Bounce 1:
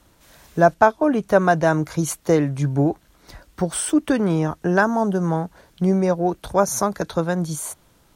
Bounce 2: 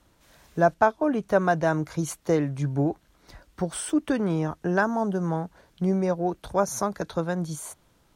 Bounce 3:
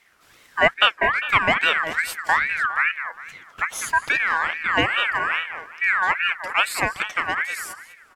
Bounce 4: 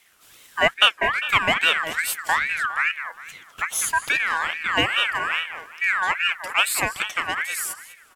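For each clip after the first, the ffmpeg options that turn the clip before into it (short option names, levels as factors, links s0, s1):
-af "highshelf=f=8800:g=-5.5,volume=0.531"
-filter_complex "[0:a]asplit=2[s0][s1];[s1]adelay=202,lowpass=f=3300:p=1,volume=0.335,asplit=2[s2][s3];[s3]adelay=202,lowpass=f=3300:p=1,volume=0.37,asplit=2[s4][s5];[s5]adelay=202,lowpass=f=3300:p=1,volume=0.37,asplit=2[s6][s7];[s7]adelay=202,lowpass=f=3300:p=1,volume=0.37[s8];[s0][s2][s4][s6][s8]amix=inputs=5:normalize=0,aeval=exprs='val(0)*sin(2*PI*1700*n/s+1700*0.25/2.4*sin(2*PI*2.4*n/s))':c=same,volume=1.88"
-af "aexciter=amount=1.3:drive=8.6:freq=2700,volume=0.794"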